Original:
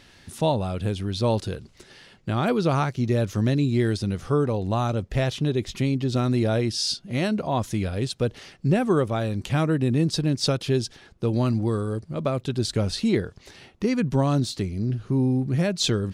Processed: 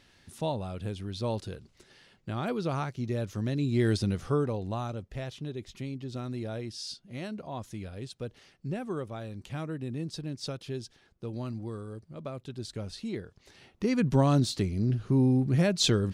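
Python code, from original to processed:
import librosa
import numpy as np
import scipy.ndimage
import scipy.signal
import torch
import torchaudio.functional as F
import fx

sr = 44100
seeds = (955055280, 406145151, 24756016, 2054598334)

y = fx.gain(x, sr, db=fx.line((3.5, -9.0), (3.95, -1.0), (5.17, -13.5), (13.24, -13.5), (14.07, -1.5)))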